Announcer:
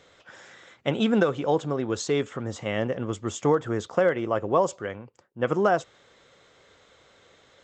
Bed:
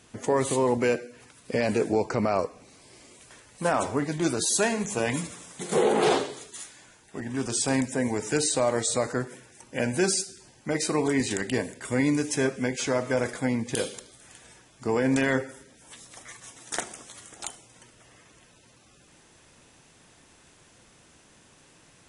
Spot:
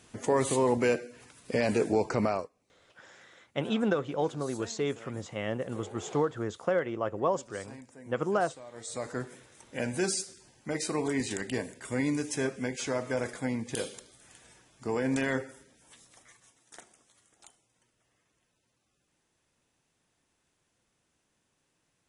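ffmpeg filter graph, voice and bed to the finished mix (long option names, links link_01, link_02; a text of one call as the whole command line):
ffmpeg -i stem1.wav -i stem2.wav -filter_complex "[0:a]adelay=2700,volume=-6dB[link_01];[1:a]volume=16dB,afade=type=out:start_time=2.26:duration=0.23:silence=0.0841395,afade=type=in:start_time=8.72:duration=0.52:silence=0.125893,afade=type=out:start_time=15.44:duration=1.18:silence=0.199526[link_02];[link_01][link_02]amix=inputs=2:normalize=0" out.wav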